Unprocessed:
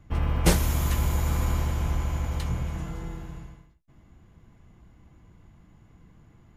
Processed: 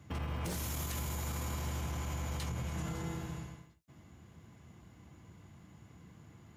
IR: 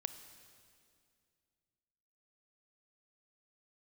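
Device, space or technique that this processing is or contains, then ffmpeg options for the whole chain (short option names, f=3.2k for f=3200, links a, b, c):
broadcast voice chain: -af "highpass=f=75:w=0.5412,highpass=f=75:w=1.3066,deesser=0.55,acompressor=threshold=-30dB:ratio=6,equalizer=f=5.3k:t=o:w=2:g=3.5,alimiter=level_in=6dB:limit=-24dB:level=0:latency=1:release=31,volume=-6dB,highshelf=f=5.7k:g=4.5"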